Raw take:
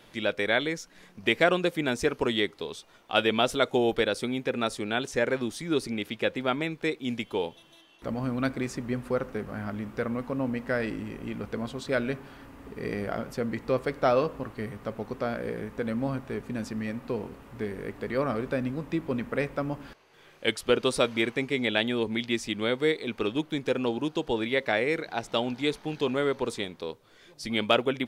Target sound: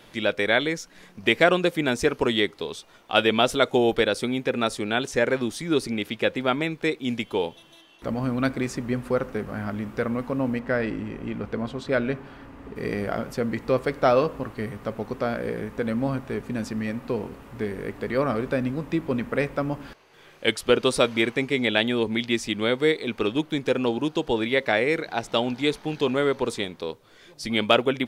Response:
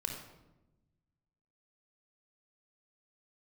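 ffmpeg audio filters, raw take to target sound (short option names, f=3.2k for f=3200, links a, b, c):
-filter_complex "[0:a]asettb=1/sr,asplit=3[a][b][c];[a]atrim=end=10.594[d];[b]atrim=start=10.59:end=12.76,asetpts=PTS-STARTPTS,afade=t=in:d=0.004:c=qsin,afade=t=out:st=2.166:d=0.004:c=qsin,lowpass=f=3.1k:p=1[e];[c]atrim=start=12.756[f];[d][e]acrossfade=d=0.004:c1=hsin:c2=qsin[g];[g][f]acrossfade=d=0.004:c1=qsin:c2=hsin,volume=4dB"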